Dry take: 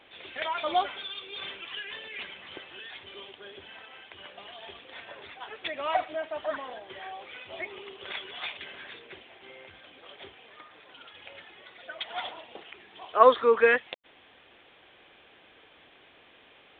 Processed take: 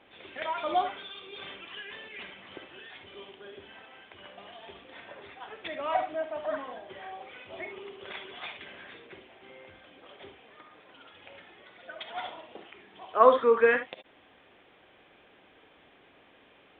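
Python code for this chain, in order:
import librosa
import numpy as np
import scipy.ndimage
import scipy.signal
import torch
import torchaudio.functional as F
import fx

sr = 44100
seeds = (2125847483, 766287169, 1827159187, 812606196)

y = fx.lowpass(x, sr, hz=2200.0, slope=6)
y = fx.peak_eq(y, sr, hz=210.0, db=3.5, octaves=1.5)
y = fx.rev_gated(y, sr, seeds[0], gate_ms=90, shape='rising', drr_db=7.5)
y = y * librosa.db_to_amplitude(-1.5)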